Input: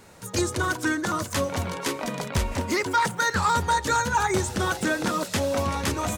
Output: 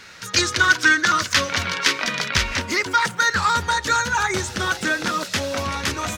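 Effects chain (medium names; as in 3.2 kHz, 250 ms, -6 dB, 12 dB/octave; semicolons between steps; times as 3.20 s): high-order bell 2.8 kHz +15.5 dB 2.6 oct, from 2.60 s +8 dB; trim -1.5 dB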